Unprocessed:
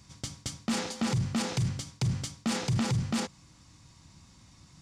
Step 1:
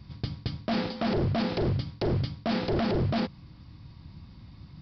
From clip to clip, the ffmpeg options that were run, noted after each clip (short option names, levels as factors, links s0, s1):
-af "lowshelf=f=380:g=11,aresample=11025,aeval=exprs='0.0891*(abs(mod(val(0)/0.0891+3,4)-2)-1)':c=same,aresample=44100"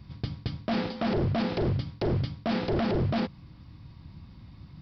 -af "equalizer=f=4700:t=o:w=0.65:g=-3.5"